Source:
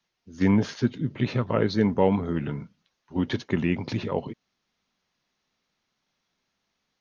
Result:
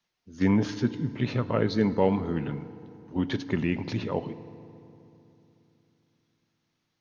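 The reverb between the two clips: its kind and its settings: FDN reverb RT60 3 s, low-frequency decay 1.3×, high-frequency decay 0.65×, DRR 13.5 dB; trim -2 dB

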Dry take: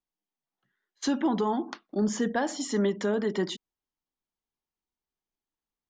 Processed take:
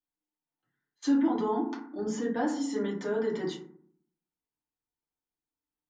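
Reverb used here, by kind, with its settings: FDN reverb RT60 0.6 s, low-frequency decay 1.35×, high-frequency decay 0.35×, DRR -5.5 dB; trim -10.5 dB

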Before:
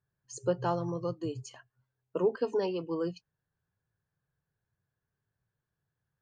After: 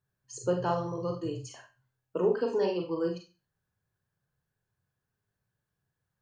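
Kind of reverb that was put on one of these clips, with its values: Schroeder reverb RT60 0.31 s, combs from 30 ms, DRR 2 dB

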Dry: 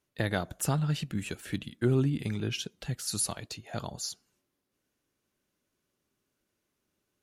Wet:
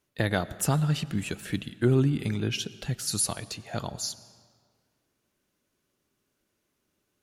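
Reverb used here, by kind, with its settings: algorithmic reverb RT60 1.9 s, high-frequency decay 0.8×, pre-delay 60 ms, DRR 17.5 dB; trim +3.5 dB

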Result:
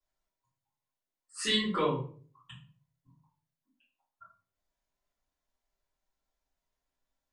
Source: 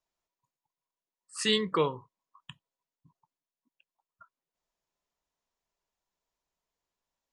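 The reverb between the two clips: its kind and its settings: simulated room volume 30 m³, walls mixed, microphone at 2.1 m; trim -12 dB

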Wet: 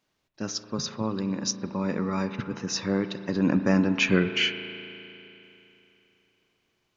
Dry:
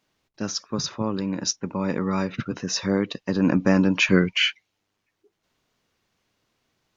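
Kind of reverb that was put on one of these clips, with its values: spring tank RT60 3.1 s, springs 36 ms, chirp 30 ms, DRR 9.5 dB; trim -3.5 dB

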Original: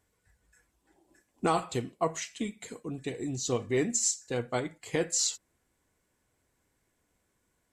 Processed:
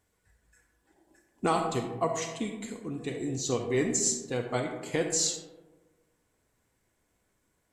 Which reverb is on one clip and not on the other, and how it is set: algorithmic reverb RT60 1.3 s, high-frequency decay 0.35×, pre-delay 10 ms, DRR 5 dB

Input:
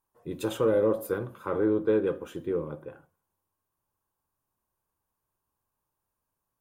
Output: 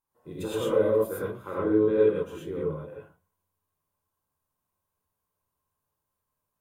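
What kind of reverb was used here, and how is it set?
gated-style reverb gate 140 ms rising, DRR -6.5 dB; trim -7 dB

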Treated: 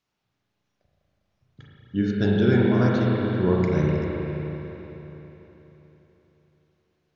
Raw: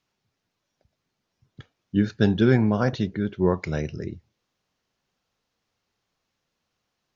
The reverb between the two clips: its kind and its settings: spring tank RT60 3.8 s, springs 33/40 ms, chirp 25 ms, DRR -4.5 dB; trim -4.5 dB

